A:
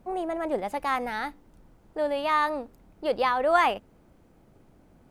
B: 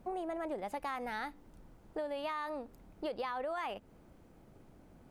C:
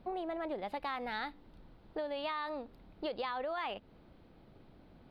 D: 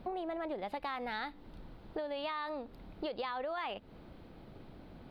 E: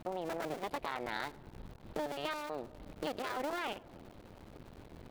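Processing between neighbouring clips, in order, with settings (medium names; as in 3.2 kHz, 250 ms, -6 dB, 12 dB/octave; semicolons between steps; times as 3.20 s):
peak limiter -18.5 dBFS, peak gain reduction 9 dB; compression, threshold -34 dBFS, peak gain reduction 10.5 dB; trim -1.5 dB
resonant high shelf 5.3 kHz -10 dB, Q 3
compression 2:1, threshold -47 dBFS, peak gain reduction 8 dB; trim +6.5 dB
cycle switcher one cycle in 2, muted; filtered feedback delay 104 ms, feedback 85%, low-pass 1.4 kHz, level -22 dB; trim +2.5 dB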